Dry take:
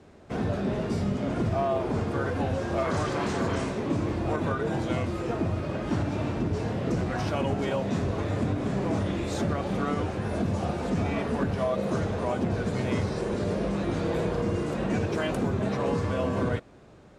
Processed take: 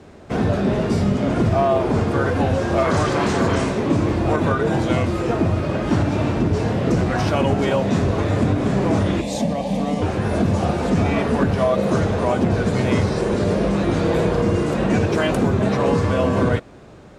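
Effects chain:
0:09.21–0:10.02: phaser with its sweep stopped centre 370 Hz, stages 6
level +9 dB

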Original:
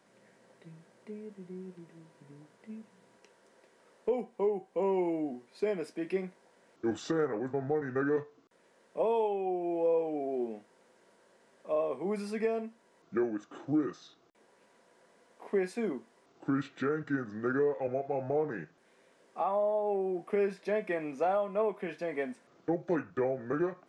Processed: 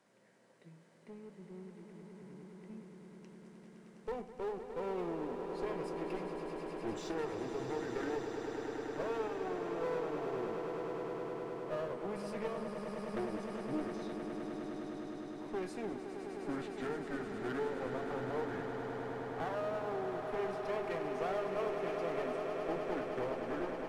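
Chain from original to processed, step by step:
asymmetric clip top −40.5 dBFS
echo that builds up and dies away 103 ms, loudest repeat 8, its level −10 dB
level −5.5 dB

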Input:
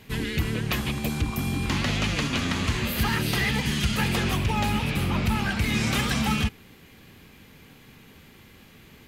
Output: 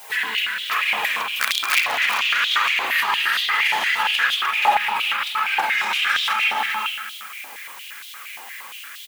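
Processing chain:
spring reverb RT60 1.1 s, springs 32/47 ms, chirp 55 ms, DRR −7.5 dB
downward compressor 2.5 to 1, threshold −19 dBFS, peak gain reduction 6.5 dB
flanger 1.1 Hz, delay 1.2 ms, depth 4.5 ms, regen −27%
background noise blue −50 dBFS
0:01.40–0:01.80: wrap-around overflow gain 18.5 dB
on a send: single-tap delay 392 ms −8 dB
on the sum: boost into a limiter +18 dB
high-pass on a step sequencer 8.6 Hz 800–3,500 Hz
level −11 dB

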